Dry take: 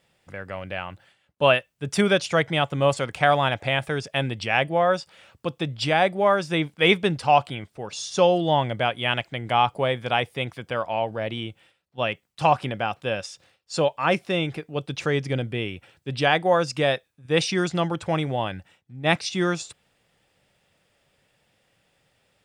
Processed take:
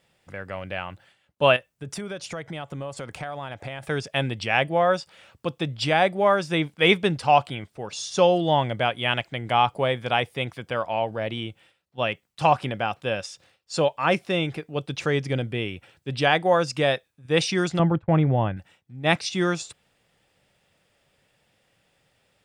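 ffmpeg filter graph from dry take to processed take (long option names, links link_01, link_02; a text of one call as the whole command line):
ffmpeg -i in.wav -filter_complex "[0:a]asettb=1/sr,asplit=3[link_01][link_02][link_03];[link_01]atrim=end=1.564[link_04];[link_02]atrim=start=1.56:end=3.83,asetpts=PTS-STARTPTS,afade=type=in:duration=0.004:curve=qsin,afade=type=out:start_time=2.266:duration=0.004:curve=qsin,equalizer=frequency=3000:width=1:gain=-4,acompressor=threshold=-31dB:ratio=5:attack=3.2:release=140:knee=1:detection=peak[link_05];[link_03]atrim=start=3.826[link_06];[link_04][link_05]acrossfade=duration=0.004:curve1=hsin:curve2=qsin[link_07];[link_07][link_06]acrossfade=duration=0.004:curve1=qsin:curve2=hsin,asettb=1/sr,asplit=3[link_08][link_09][link_10];[link_08]atrim=end=17.794[link_11];[link_09]atrim=start=17.79:end=18.57,asetpts=PTS-STARTPTS,afade=type=in:duration=0.004:curve=qsin,afade=type=out:start_time=0.776:duration=0.004:curve=qsin,lowpass=1900,agate=range=-33dB:threshold=-30dB:ratio=3:release=100:detection=peak,lowshelf=frequency=220:gain=12[link_12];[link_10]atrim=start=18.566[link_13];[link_11][link_12]acrossfade=duration=0.004:curve1=hsin:curve2=qsin[link_14];[link_14][link_13]acrossfade=duration=0.004:curve1=qsin:curve2=hsin" out.wav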